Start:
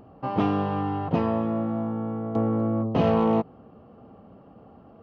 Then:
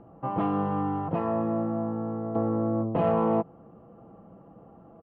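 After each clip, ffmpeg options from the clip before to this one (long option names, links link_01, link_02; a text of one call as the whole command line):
ffmpeg -i in.wav -filter_complex "[0:a]lowpass=1600,aecho=1:1:6:0.42,acrossover=split=500[link_01][link_02];[link_01]alimiter=limit=-18.5dB:level=0:latency=1:release=287[link_03];[link_03][link_02]amix=inputs=2:normalize=0,volume=-1.5dB" out.wav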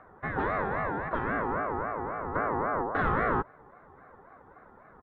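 ffmpeg -i in.wav -af "aeval=exprs='val(0)*sin(2*PI*770*n/s+770*0.25/3.7*sin(2*PI*3.7*n/s))':channel_layout=same" out.wav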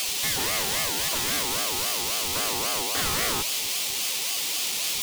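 ffmpeg -i in.wav -filter_complex "[0:a]aeval=exprs='val(0)+0.5*0.0251*sgn(val(0))':channel_layout=same,acrossover=split=120[link_01][link_02];[link_01]acrusher=bits=6:mix=0:aa=0.000001[link_03];[link_02]aexciter=amount=7:drive=8.5:freq=2300[link_04];[link_03][link_04]amix=inputs=2:normalize=0,volume=-5.5dB" out.wav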